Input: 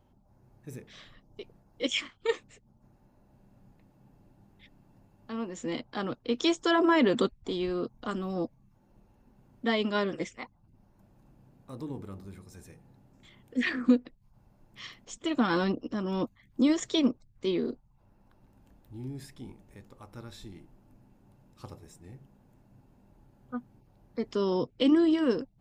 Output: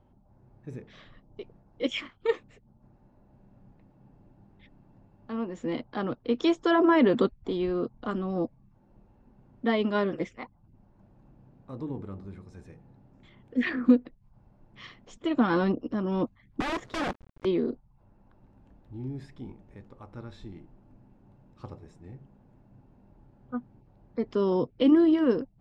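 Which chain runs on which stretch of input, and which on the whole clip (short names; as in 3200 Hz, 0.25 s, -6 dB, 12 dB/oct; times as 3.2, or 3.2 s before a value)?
16.6–17.45 high shelf 2900 Hz -11 dB + companded quantiser 4-bit + wrapped overs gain 26 dB
whole clip: Bessel low-pass 4600 Hz, order 2; high shelf 2400 Hz -9 dB; gain +3 dB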